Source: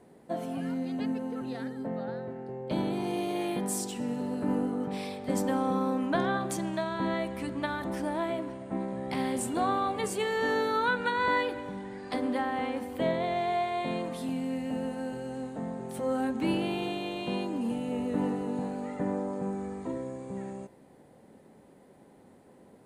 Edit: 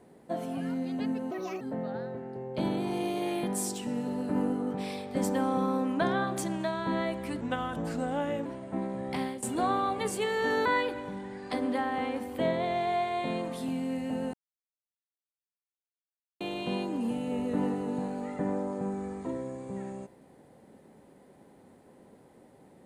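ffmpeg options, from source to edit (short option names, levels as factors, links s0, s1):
-filter_complex "[0:a]asplit=9[s0][s1][s2][s3][s4][s5][s6][s7][s8];[s0]atrim=end=1.314[s9];[s1]atrim=start=1.31:end=1.74,asetpts=PTS-STARTPTS,asetrate=63504,aresample=44100[s10];[s2]atrim=start=1.736:end=7.544[s11];[s3]atrim=start=7.54:end=8.44,asetpts=PTS-STARTPTS,asetrate=37926,aresample=44100,atrim=end_sample=46151,asetpts=PTS-STARTPTS[s12];[s4]atrim=start=8.436:end=9.41,asetpts=PTS-STARTPTS,afade=t=out:st=0.714:d=0.26:silence=0.158489[s13];[s5]atrim=start=9.41:end=10.642,asetpts=PTS-STARTPTS,afade=t=in:d=0.004:c=hsin:silence=0.158489[s14];[s6]atrim=start=11.258:end=14.94,asetpts=PTS-STARTPTS,afade=t=out:st=3.678:d=0.004:c=hsin[s15];[s7]atrim=start=14.94:end=17.01,asetpts=PTS-STARTPTS,volume=0[s16];[s8]atrim=start=17.01,asetpts=PTS-STARTPTS,afade=t=in:d=0.004:c=hsin[s17];[s9][s10]acrossfade=d=0.004:c1=hsin:c2=hsin[s18];[s18][s11]acrossfade=d=0.004:c1=hsin:c2=hsin[s19];[s19][s12]acrossfade=d=0.004:c1=hsin:c2=hsin[s20];[s13][s14]concat=n=2:v=0:a=1[s21];[s20][s21]acrossfade=d=0.004:c1=hsin:c2=hsin[s22];[s15][s16][s17]concat=n=3:v=0:a=1[s23];[s22][s23]acrossfade=d=0.004:c1=hsin:c2=hsin"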